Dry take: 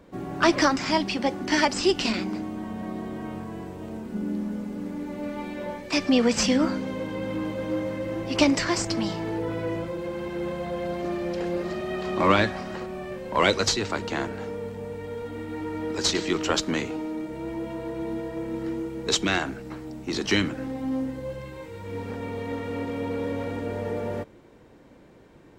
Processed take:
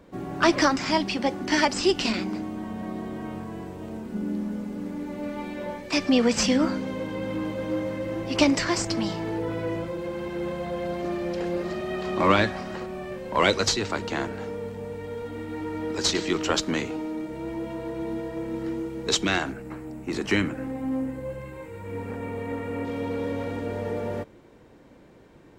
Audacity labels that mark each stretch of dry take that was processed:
19.520000	22.850000	band shelf 4400 Hz -8 dB 1.2 oct

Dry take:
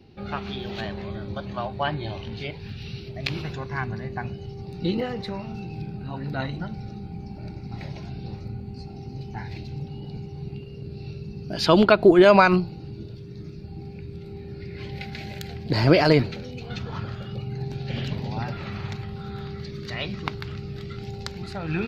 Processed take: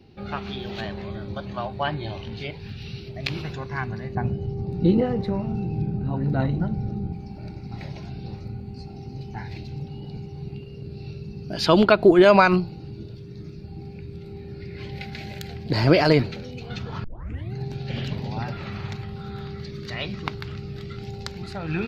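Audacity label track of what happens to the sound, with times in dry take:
4.150000	7.130000	tilt shelf lows +8 dB, about 1100 Hz
17.040000	17.040000	tape start 0.49 s

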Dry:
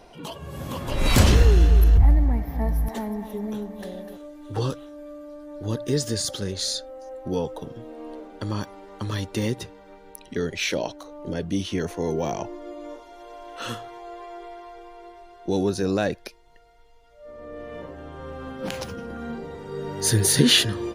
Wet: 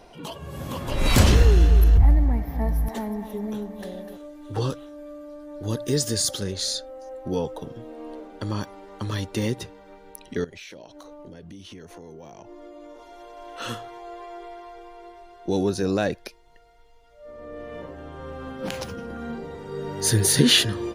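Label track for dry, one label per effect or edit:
5.630000	6.430000	high shelf 6000 Hz +7.5 dB
10.440000	13.370000	compressor 10:1, threshold -39 dBFS

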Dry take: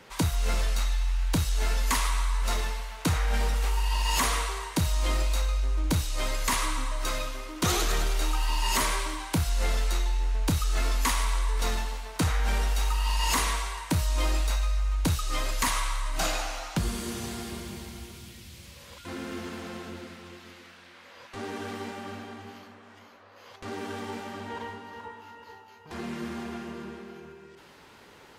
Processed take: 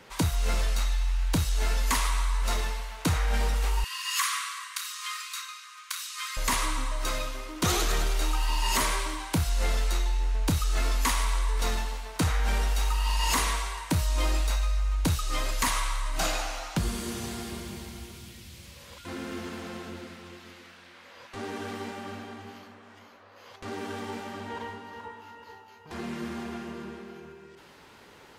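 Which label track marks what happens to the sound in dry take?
3.840000	6.370000	brick-wall FIR high-pass 1000 Hz

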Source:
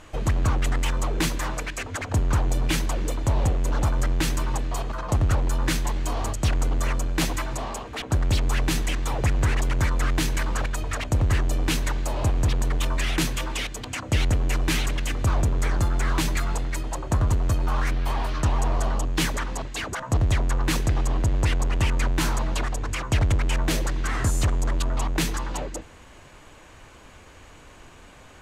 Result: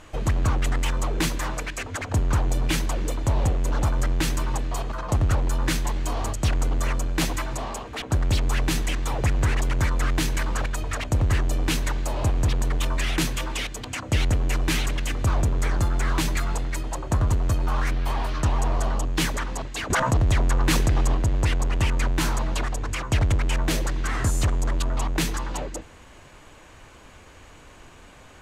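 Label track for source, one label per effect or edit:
19.900000	21.150000	fast leveller amount 70%

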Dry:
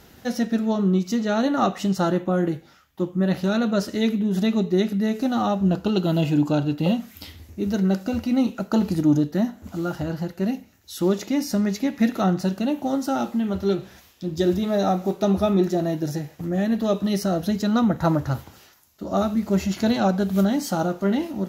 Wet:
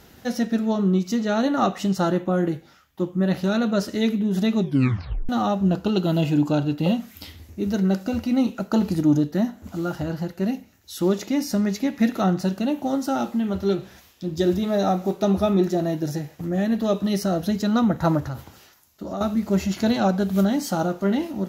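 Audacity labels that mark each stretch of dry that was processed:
4.600000	4.600000	tape stop 0.69 s
18.200000	19.210000	compressor 4:1, threshold -27 dBFS

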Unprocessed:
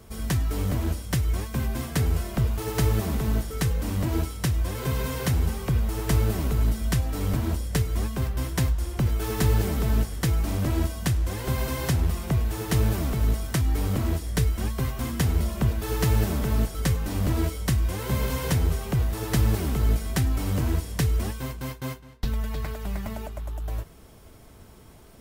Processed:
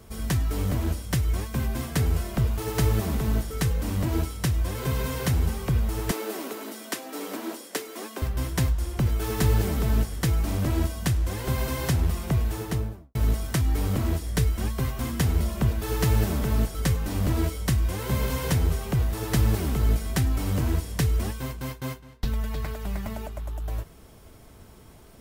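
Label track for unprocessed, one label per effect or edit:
6.110000	8.220000	steep high-pass 260 Hz
12.460000	13.150000	studio fade out

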